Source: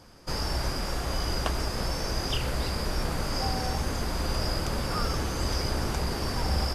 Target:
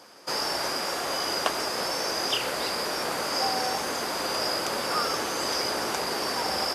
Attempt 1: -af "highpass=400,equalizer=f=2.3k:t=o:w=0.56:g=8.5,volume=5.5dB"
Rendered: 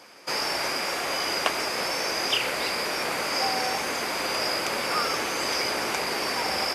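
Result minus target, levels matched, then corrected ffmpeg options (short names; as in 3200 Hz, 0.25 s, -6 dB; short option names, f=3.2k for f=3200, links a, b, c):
2000 Hz band +3.0 dB
-af "highpass=400,volume=5.5dB"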